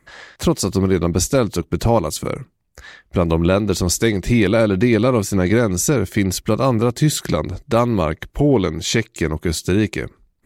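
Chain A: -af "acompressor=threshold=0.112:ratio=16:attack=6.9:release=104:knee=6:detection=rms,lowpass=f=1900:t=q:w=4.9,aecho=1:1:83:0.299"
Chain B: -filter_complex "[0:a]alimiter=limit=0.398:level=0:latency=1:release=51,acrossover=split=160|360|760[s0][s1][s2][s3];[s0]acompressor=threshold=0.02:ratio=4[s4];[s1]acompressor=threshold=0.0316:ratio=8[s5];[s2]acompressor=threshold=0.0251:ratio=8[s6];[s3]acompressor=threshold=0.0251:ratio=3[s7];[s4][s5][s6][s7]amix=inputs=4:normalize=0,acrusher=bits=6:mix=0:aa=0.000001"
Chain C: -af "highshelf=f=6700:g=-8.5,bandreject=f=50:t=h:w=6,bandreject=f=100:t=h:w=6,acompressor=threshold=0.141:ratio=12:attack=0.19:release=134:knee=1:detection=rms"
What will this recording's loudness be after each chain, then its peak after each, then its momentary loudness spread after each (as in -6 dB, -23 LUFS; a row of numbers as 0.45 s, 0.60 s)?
-24.5 LUFS, -28.0 LUFS, -26.5 LUFS; -5.0 dBFS, -12.5 dBFS, -15.0 dBFS; 5 LU, 5 LU, 6 LU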